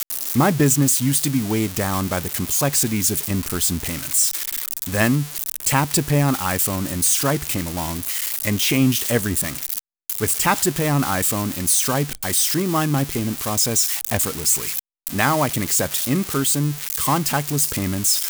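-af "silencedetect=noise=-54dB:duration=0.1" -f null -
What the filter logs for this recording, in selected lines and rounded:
silence_start: 9.79
silence_end: 10.10 | silence_duration: 0.30
silence_start: 14.79
silence_end: 15.07 | silence_duration: 0.27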